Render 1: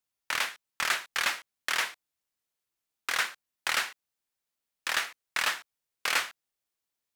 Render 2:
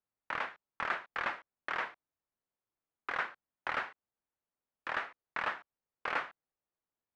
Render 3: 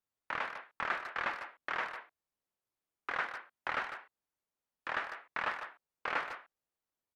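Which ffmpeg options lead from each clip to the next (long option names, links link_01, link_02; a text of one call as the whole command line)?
ffmpeg -i in.wav -af "lowpass=1300" out.wav
ffmpeg -i in.wav -filter_complex "[0:a]asplit=2[link_01][link_02];[link_02]adelay=150,highpass=300,lowpass=3400,asoftclip=type=hard:threshold=-28.5dB,volume=-8dB[link_03];[link_01][link_03]amix=inputs=2:normalize=0" -ar 48000 -c:a libmp3lame -b:a 96k out.mp3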